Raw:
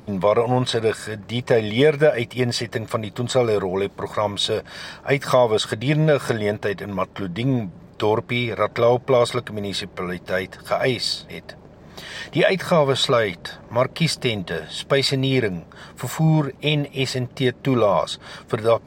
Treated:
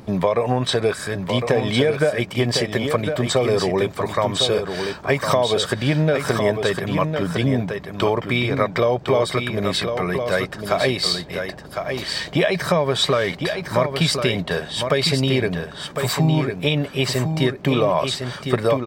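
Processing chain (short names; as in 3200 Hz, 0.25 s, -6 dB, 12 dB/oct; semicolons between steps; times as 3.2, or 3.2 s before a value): compressor, threshold -18 dBFS, peak gain reduction 7.5 dB; on a send: echo 1.056 s -6.5 dB; on the sum: gain +3.5 dB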